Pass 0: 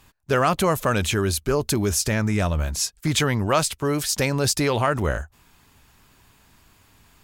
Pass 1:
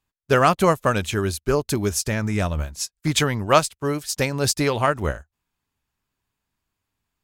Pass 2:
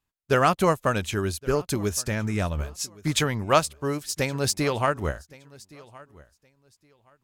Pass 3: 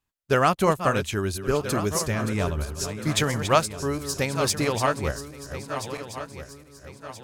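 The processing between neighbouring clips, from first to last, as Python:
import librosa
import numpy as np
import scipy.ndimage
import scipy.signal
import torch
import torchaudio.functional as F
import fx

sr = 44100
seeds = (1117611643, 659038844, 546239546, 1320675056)

y1 = fx.upward_expand(x, sr, threshold_db=-37.0, expansion=2.5)
y1 = F.gain(torch.from_numpy(y1), 6.0).numpy()
y2 = fx.wow_flutter(y1, sr, seeds[0], rate_hz=2.1, depth_cents=24.0)
y2 = fx.echo_feedback(y2, sr, ms=1118, feedback_pct=21, wet_db=-22.5)
y2 = F.gain(torch.from_numpy(y2), -3.5).numpy()
y3 = fx.reverse_delay_fb(y2, sr, ms=664, feedback_pct=61, wet_db=-9)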